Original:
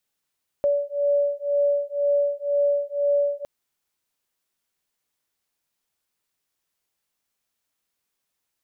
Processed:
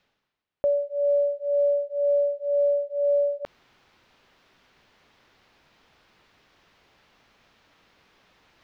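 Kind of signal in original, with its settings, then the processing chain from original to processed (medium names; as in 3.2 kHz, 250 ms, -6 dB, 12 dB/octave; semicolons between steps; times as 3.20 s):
beating tones 572 Hz, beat 2 Hz, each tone -22.5 dBFS 2.81 s
block-companded coder 7-bit; reverse; upward compressor, threshold -30 dBFS; reverse; distance through air 260 m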